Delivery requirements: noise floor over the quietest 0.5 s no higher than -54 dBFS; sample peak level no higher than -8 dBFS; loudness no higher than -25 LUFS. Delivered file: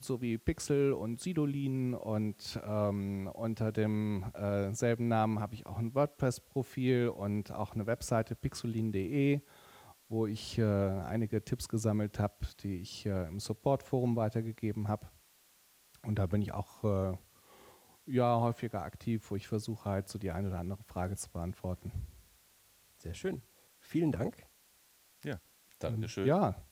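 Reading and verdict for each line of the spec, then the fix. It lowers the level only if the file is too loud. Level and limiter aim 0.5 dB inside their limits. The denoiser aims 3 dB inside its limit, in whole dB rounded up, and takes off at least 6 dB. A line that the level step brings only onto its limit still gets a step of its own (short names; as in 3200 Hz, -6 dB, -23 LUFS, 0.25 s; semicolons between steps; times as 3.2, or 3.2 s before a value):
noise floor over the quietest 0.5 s -66 dBFS: OK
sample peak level -16.5 dBFS: OK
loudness -35.0 LUFS: OK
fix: none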